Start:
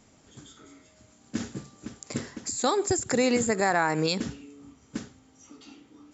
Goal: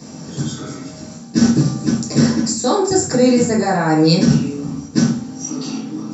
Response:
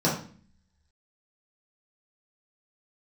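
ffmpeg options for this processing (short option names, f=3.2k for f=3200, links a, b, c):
-filter_complex "[0:a]areverse,acompressor=threshold=-37dB:ratio=6,areverse,highshelf=f=3.9k:g=10.5[a];[1:a]atrim=start_sample=2205[b];[a][b]afir=irnorm=-1:irlink=0,volume=5.5dB"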